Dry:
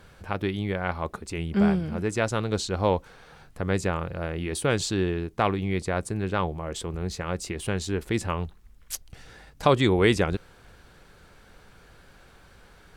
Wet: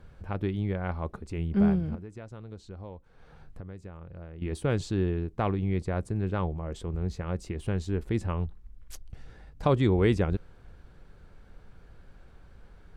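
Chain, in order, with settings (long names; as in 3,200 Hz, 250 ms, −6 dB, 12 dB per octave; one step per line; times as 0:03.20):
spectral tilt −2.5 dB per octave
0:01.95–0:04.42: downward compressor 6 to 1, threshold −33 dBFS, peak gain reduction 18 dB
level −7 dB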